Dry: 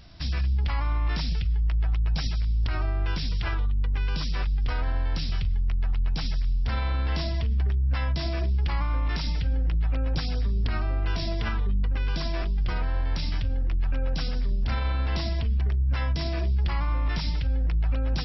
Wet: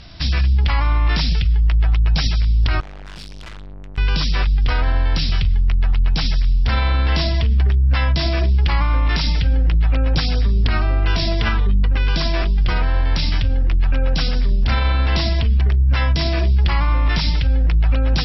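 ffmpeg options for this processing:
-filter_complex "[0:a]asettb=1/sr,asplit=3[a][b][c];[a]atrim=end=2.804[d];[b]atrim=start=2.8:end=3.98,asetpts=PTS-STARTPTS,afade=t=in:d=0.004:c=qsin,afade=t=out:st=1.176:d=0.004:c=qsin,aeval=exprs='(tanh(158*val(0)+0.6)-tanh(0.6))/158':c=same[e];[c]atrim=start=3.976[f];[d][e]acrossfade=d=0.004:c1=hsin:c2=qsin[g];[g][f]acrossfade=d=0.004:c1=qsin:c2=hsin,lowpass=3.9k,aemphasis=mode=production:type=75kf,volume=9dB"

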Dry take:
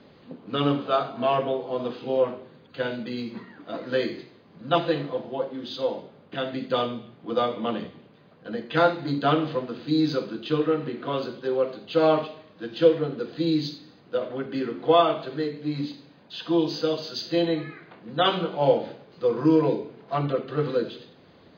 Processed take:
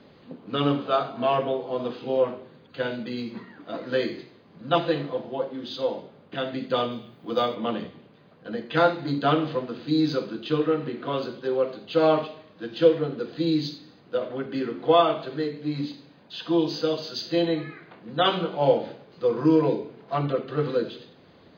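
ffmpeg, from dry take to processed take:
-filter_complex "[0:a]asettb=1/sr,asplit=3[a][b][c];[a]atrim=end=6.914[d];[b]atrim=start=6.91:end=7.55,asetpts=PTS-STARTPTS,afade=t=in:d=0.004:c=qsin,afade=t=out:st=0.636:d=0.004:c=qsin,aemphasis=mode=production:type=50fm[e];[c]atrim=start=7.546[f];[d][e]acrossfade=d=0.004:c1=hsin:c2=qsin[g];[g][f]acrossfade=d=0.004:c1=qsin:c2=hsin"

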